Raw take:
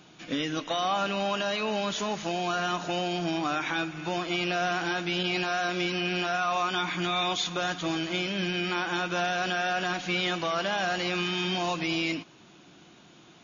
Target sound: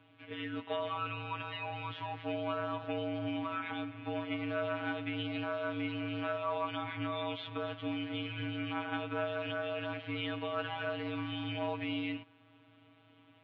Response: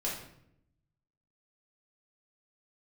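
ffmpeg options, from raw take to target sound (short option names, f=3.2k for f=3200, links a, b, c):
-af "afftfilt=real='hypot(re,im)*cos(PI*b)':imag='0':win_size=1024:overlap=0.75,highpass=f=180:t=q:w=0.5412,highpass=f=180:t=q:w=1.307,lowpass=f=3.2k:t=q:w=0.5176,lowpass=f=3.2k:t=q:w=0.7071,lowpass=f=3.2k:t=q:w=1.932,afreqshift=-61,volume=-4.5dB"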